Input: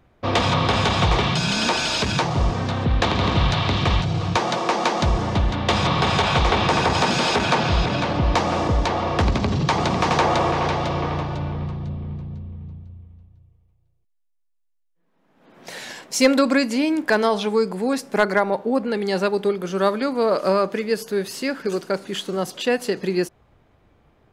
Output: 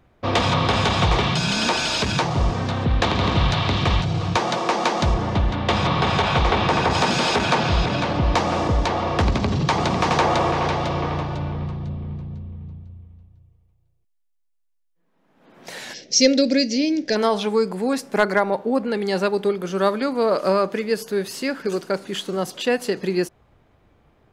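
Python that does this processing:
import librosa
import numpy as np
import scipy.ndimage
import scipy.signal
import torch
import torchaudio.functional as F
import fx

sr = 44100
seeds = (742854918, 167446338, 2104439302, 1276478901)

y = fx.high_shelf(x, sr, hz=6700.0, db=-10.0, at=(5.14, 6.91))
y = fx.curve_eq(y, sr, hz=(570.0, 1100.0, 1900.0, 3100.0, 5900.0, 10000.0), db=(0, -26, -4, -1, 11, -30), at=(15.93, 17.15), fade=0.02)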